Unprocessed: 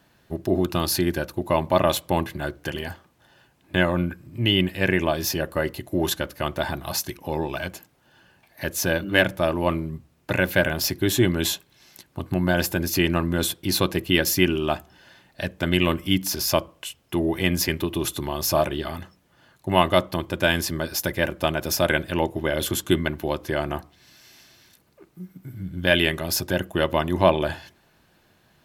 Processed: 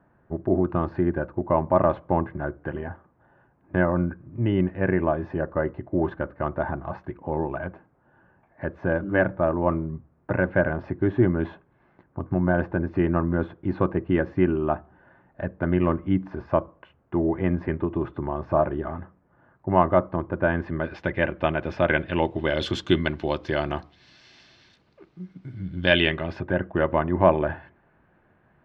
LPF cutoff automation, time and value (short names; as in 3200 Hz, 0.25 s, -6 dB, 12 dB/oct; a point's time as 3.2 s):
LPF 24 dB/oct
20.5 s 1500 Hz
20.96 s 2500 Hz
21.92 s 2500 Hz
22.56 s 4700 Hz
25.85 s 4700 Hz
26.5 s 1900 Hz